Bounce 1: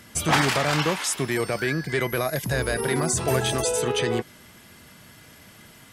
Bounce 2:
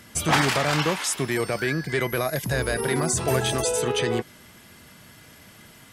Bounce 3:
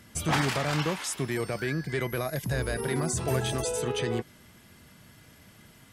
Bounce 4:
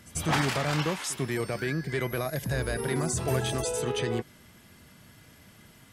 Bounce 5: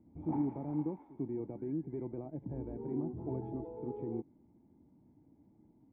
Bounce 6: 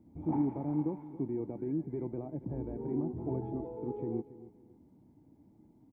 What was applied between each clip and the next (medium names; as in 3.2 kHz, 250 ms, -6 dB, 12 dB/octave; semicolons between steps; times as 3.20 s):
no audible change
bass shelf 250 Hz +6 dB; trim -7 dB
pre-echo 94 ms -19 dB
cascade formant filter u; trim +1 dB
feedback delay 277 ms, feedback 28%, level -16.5 dB; trim +3 dB